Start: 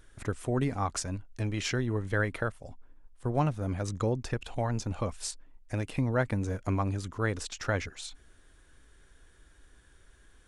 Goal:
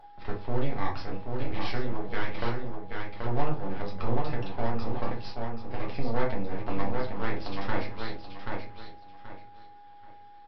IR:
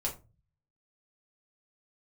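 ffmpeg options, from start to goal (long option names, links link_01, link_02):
-filter_complex "[0:a]highpass=frequency=130:width=0.5412,highpass=frequency=130:width=1.3066,equalizer=frequency=930:width_type=o:width=0.3:gain=6.5,asplit=2[link_01][link_02];[link_02]adelay=781,lowpass=frequency=4300:poles=1,volume=-5.5dB,asplit=2[link_03][link_04];[link_04]adelay=781,lowpass=frequency=4300:poles=1,volume=0.27,asplit=2[link_05][link_06];[link_06]adelay=781,lowpass=frequency=4300:poles=1,volume=0.27,asplit=2[link_07][link_08];[link_08]adelay=781,lowpass=frequency=4300:poles=1,volume=0.27[link_09];[link_01][link_03][link_05][link_07][link_09]amix=inputs=5:normalize=0,aresample=11025,aeval=exprs='max(val(0),0)':channel_layout=same,aresample=44100,aeval=exprs='val(0)+0.00398*sin(2*PI*820*n/s)':channel_layout=same[link_10];[1:a]atrim=start_sample=2205,asetrate=38808,aresample=44100[link_11];[link_10][link_11]afir=irnorm=-1:irlink=0,acontrast=78,volume=-8dB"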